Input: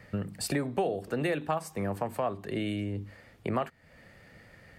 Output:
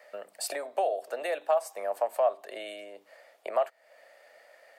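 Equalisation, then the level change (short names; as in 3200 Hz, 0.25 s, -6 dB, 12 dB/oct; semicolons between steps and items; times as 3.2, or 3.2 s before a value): ladder high-pass 570 Hz, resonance 70%; high shelf 3900 Hz +6.5 dB; +7.0 dB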